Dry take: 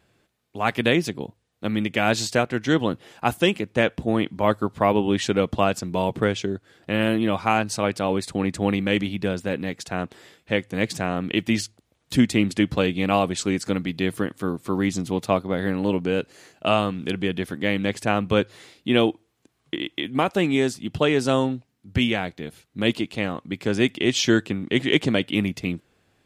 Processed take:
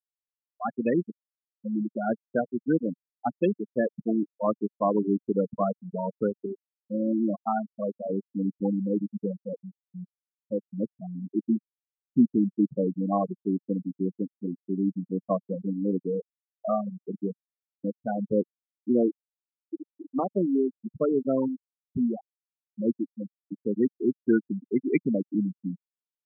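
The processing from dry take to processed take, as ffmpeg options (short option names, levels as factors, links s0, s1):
-filter_complex "[0:a]asplit=3[s0][s1][s2];[s0]atrim=end=17.33,asetpts=PTS-STARTPTS,afade=t=out:st=17.326:d=0.004:c=hsin[s3];[s1]atrim=start=17.33:end=17.84,asetpts=PTS-STARTPTS,volume=0[s4];[s2]atrim=start=17.84,asetpts=PTS-STARTPTS,afade=t=in:d=0.004:c=hsin[s5];[s3][s4][s5]concat=n=3:v=0:a=1,lowpass=3400,afftfilt=real='re*gte(hypot(re,im),0.355)':imag='im*gte(hypot(re,im),0.355)':win_size=1024:overlap=0.75,lowshelf=f=130:t=q:w=1.5:g=-14,volume=0.596"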